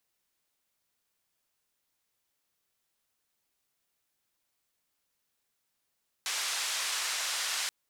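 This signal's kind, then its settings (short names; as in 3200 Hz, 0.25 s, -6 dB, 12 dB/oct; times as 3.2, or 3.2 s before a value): noise band 1000–7200 Hz, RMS -33 dBFS 1.43 s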